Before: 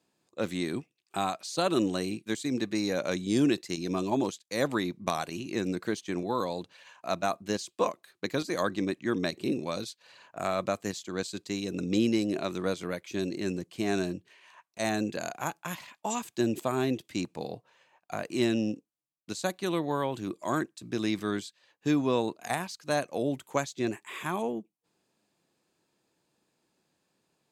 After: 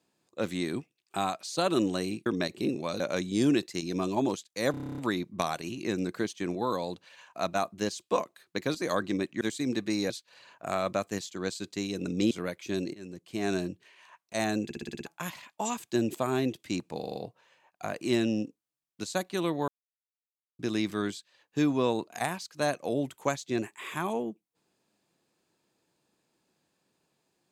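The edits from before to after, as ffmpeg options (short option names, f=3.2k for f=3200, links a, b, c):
-filter_complex "[0:a]asplit=29[a][b][c][d][e][f][g][h][i][j][k][l][m][n][o][p][q][r][s][t][u][v][w][x][y][z][aa][ab][ac];[a]atrim=end=2.262[ad];[b]atrim=start=9.088:end=9.832[ae];[c]atrim=start=2.948:end=4.692[af];[d]atrim=start=4.658:end=4.692[ag];[e]atrim=start=4.658:end=4.692[ah];[f]atrim=start=4.658:end=4.692[ai];[g]atrim=start=4.658:end=4.692[aj];[h]atrim=start=4.658:end=4.692[ak];[i]atrim=start=4.658:end=4.692[al];[j]atrim=start=4.658:end=4.692[am];[k]atrim=start=4.658:end=4.692[an];[l]atrim=start=4.658:end=9.092[ao];[m]atrim=start=2.258:end=2.952[ap];[n]atrim=start=9.828:end=12.042[aq];[o]atrim=start=12.758:end=13.39,asetpts=PTS-STARTPTS,afade=t=out:st=0.628:d=0.004:c=hsin:silence=0.105925[ar];[p]atrim=start=13.39:end=15.152,asetpts=PTS-STARTPTS,afade=t=in:d=0.62:silence=0.105925[as];[q]atrim=start=15.088:end=15.152[at];[r]atrim=start=15.088:end=15.152[au];[s]atrim=start=15.088:end=15.152[av];[t]atrim=start=15.088:end=15.152[aw];[u]atrim=start=15.088:end=15.152[ax];[v]atrim=start=15.088:end=15.152[ay];[w]atrim=start=15.508:end=17.482[az];[x]atrim=start=17.438:end=17.482[ba];[y]atrim=start=17.438:end=17.482[bb];[z]atrim=start=17.438:end=17.482[bc];[aa]atrim=start=17.438:end=19.97,asetpts=PTS-STARTPTS,afade=t=out:st=2.528:d=0.004:c=hsin[bd];[ab]atrim=start=19.97:end=20.88,asetpts=PTS-STARTPTS,volume=0[be];[ac]atrim=start=20.88,asetpts=PTS-STARTPTS,afade=t=in:d=0.004:c=hsin[bf];[ad][ae]acrossfade=d=0.004:c1=hsin:c2=hsin[bg];[bg][af]acrossfade=d=0.004:c1=hsin:c2=hsin[bh];[bh][ag]acrossfade=d=0.004:c1=hsin:c2=hsin[bi];[bi][ah]acrossfade=d=0.004:c1=hsin:c2=hsin[bj];[bj][ai]acrossfade=d=0.004:c1=hsin:c2=hsin[bk];[bk][aj]acrossfade=d=0.004:c1=hsin:c2=hsin[bl];[bl][ak]acrossfade=d=0.004:c1=hsin:c2=hsin[bm];[bm][al]acrossfade=d=0.004:c1=hsin:c2=hsin[bn];[bn][am]acrossfade=d=0.004:c1=hsin:c2=hsin[bo];[bo][an]acrossfade=d=0.004:c1=hsin:c2=hsin[bp];[bp][ao]acrossfade=d=0.004:c1=hsin:c2=hsin[bq];[bq][ap]acrossfade=d=0.004:c1=hsin:c2=hsin[br];[br][aq]acrossfade=d=0.004:c1=hsin:c2=hsin[bs];[ar][as]concat=n=2:v=0:a=1[bt];[bs][bt]acrossfade=d=0.004:c1=hsin:c2=hsin[bu];[bu][at]acrossfade=d=0.004:c1=hsin:c2=hsin[bv];[bv][au]acrossfade=d=0.004:c1=hsin:c2=hsin[bw];[bw][av]acrossfade=d=0.004:c1=hsin:c2=hsin[bx];[bx][aw]acrossfade=d=0.004:c1=hsin:c2=hsin[by];[by][ax]acrossfade=d=0.004:c1=hsin:c2=hsin[bz];[bz][ay]acrossfade=d=0.004:c1=hsin:c2=hsin[ca];[ca][az]acrossfade=d=0.004:c1=hsin:c2=hsin[cb];[cb][ba]acrossfade=d=0.004:c1=hsin:c2=hsin[cc];[cc][bb]acrossfade=d=0.004:c1=hsin:c2=hsin[cd];[cd][bc]acrossfade=d=0.004:c1=hsin:c2=hsin[ce];[bd][be][bf]concat=n=3:v=0:a=1[cf];[ce][cf]acrossfade=d=0.004:c1=hsin:c2=hsin"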